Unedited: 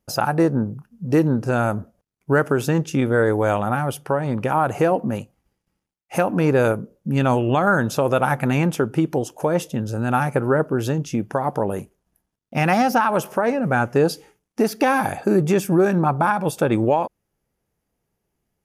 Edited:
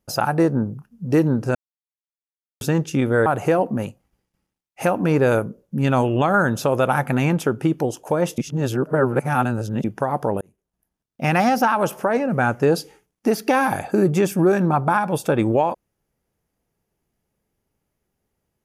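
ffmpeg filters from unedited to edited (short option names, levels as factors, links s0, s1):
-filter_complex "[0:a]asplit=7[s0][s1][s2][s3][s4][s5][s6];[s0]atrim=end=1.55,asetpts=PTS-STARTPTS,afade=t=out:st=1.546:d=0.004:c=hsin[s7];[s1]atrim=start=1.55:end=2.61,asetpts=PTS-STARTPTS,volume=0[s8];[s2]atrim=start=2.61:end=3.262,asetpts=PTS-STARTPTS,afade=t=in:d=0.004:c=hsin[s9];[s3]atrim=start=4.588:end=9.712[s10];[s4]atrim=start=9.708:end=11.172,asetpts=PTS-STARTPTS,areverse[s11];[s5]atrim=start=11.168:end=11.74,asetpts=PTS-STARTPTS,afade=t=out:st=0.568:d=0.004:c=hsin[s12];[s6]atrim=start=11.74,asetpts=PTS-STARTPTS,afade=t=in:d=0.87[s13];[s7][s8][s9]concat=n=3:v=0:a=1[s14];[s14][s10]acrossfade=d=0.004:c1=hsin:c2=hsin[s15];[s15][s11]acrossfade=d=0.004:c1=hsin:c2=hsin[s16];[s12][s13]concat=n=2:v=0:a=1[s17];[s16][s17]acrossfade=d=0.004:c1=hsin:c2=hsin"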